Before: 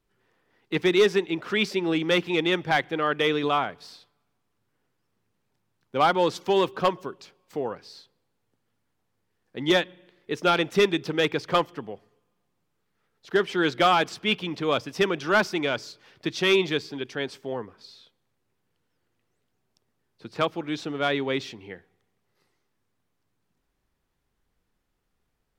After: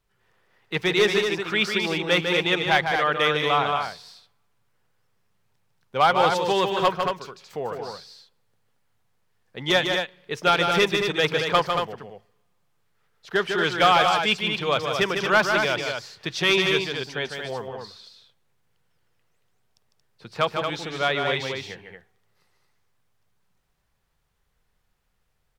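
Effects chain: peaking EQ 290 Hz -11.5 dB 0.86 oct; on a send: loudspeakers at several distances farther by 52 m -6 dB, 78 m -6 dB; on the sum: trim +3 dB

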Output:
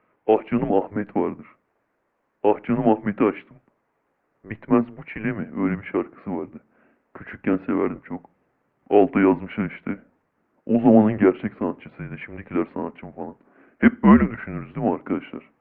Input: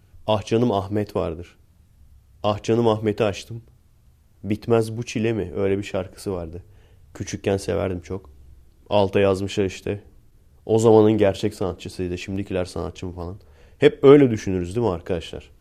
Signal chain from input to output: mistuned SSB -210 Hz 490–2300 Hz; trim +5 dB; Opus 48 kbps 48 kHz

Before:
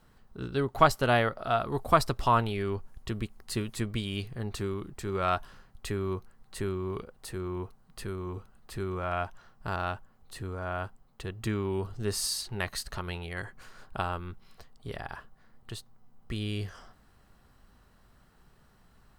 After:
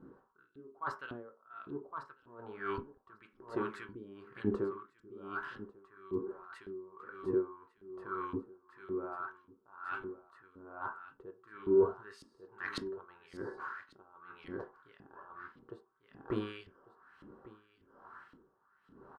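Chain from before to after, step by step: high-order bell 1.2 kHz +14.5 dB 1.1 oct; LFO band-pass saw up 1.8 Hz 240–3400 Hz; reverse; compression 20:1, threshold -43 dBFS, peak gain reduction 37.5 dB; reverse; resonant low shelf 610 Hz +9 dB, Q 1.5; delay 1147 ms -10 dB; on a send at -5 dB: reverberation RT60 0.35 s, pre-delay 3 ms; on the sum: logarithmic tremolo 1.1 Hz, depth 21 dB; trim +7 dB

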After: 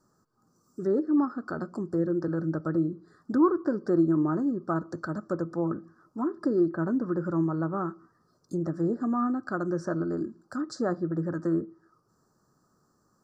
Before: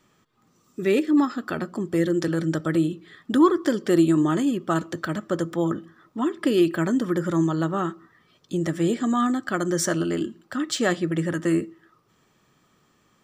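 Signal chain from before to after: low-pass that closes with the level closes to 2 kHz, closed at -20 dBFS; elliptic band-stop 1.5–4.7 kHz, stop band 60 dB; trim -4.5 dB

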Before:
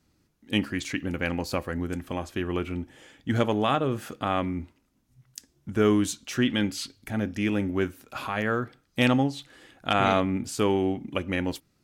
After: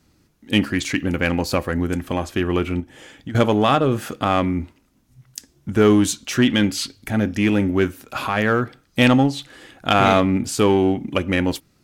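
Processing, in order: in parallel at -6 dB: hard clipper -22.5 dBFS, distortion -9 dB; 2.80–3.35 s: on the sum: compression 8:1, threshold -35 dBFS, peak gain reduction 15.5 dB; trim +5 dB

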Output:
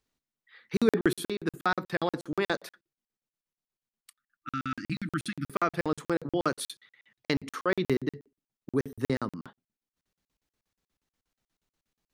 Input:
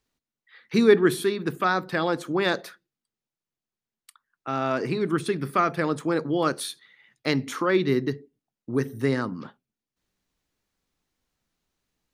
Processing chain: spectral selection erased 4.13–5.47 s, 340–1200 Hz; crackling interface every 0.12 s, samples 2048, zero, from 0.77 s; trim -3 dB

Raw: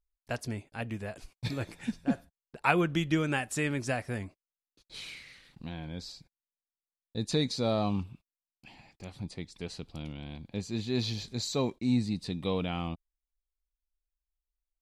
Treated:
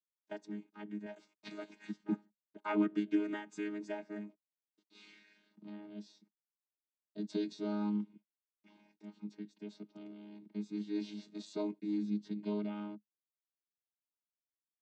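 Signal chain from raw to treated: vocoder on a held chord bare fifth, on G#3; 1.06–2.04 s: tilt shelf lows -6 dB, about 640 Hz; trim -5.5 dB

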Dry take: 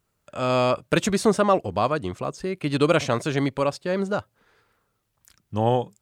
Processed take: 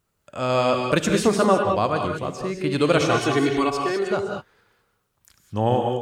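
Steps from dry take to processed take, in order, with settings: 2.97–4.11 s: comb 2.7 ms, depth 84%; gated-style reverb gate 230 ms rising, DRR 3 dB

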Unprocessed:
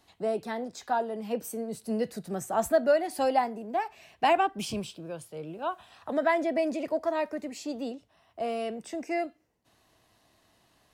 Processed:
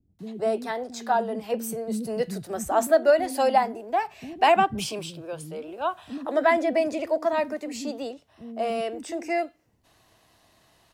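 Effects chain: bands offset in time lows, highs 190 ms, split 280 Hz; trim +5 dB

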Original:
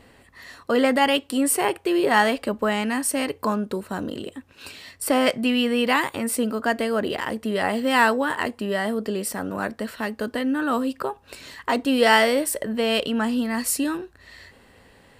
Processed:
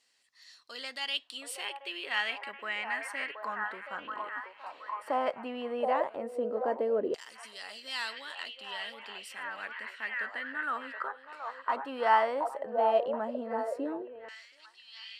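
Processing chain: repeats whose band climbs or falls 725 ms, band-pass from 720 Hz, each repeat 0.7 oct, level -3 dB; LFO band-pass saw down 0.14 Hz 430–6000 Hz; trim -2.5 dB

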